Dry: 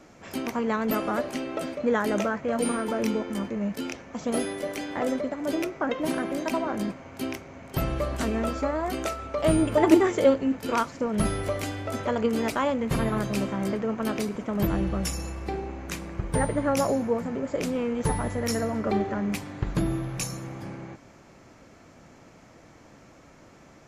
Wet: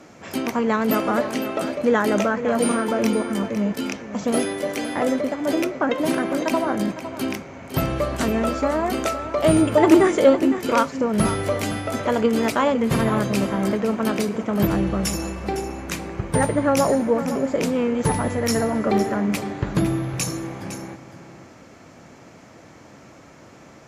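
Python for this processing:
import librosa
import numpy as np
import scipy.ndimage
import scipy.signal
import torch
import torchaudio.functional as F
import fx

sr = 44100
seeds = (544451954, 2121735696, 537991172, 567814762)

p1 = x + fx.echo_single(x, sr, ms=508, db=-12.0, dry=0)
p2 = fx.fold_sine(p1, sr, drive_db=3, ceiling_db=-4.0)
p3 = scipy.signal.sosfilt(scipy.signal.butter(2, 80.0, 'highpass', fs=sr, output='sos'), p2)
y = p3 * 10.0 ** (-1.0 / 20.0)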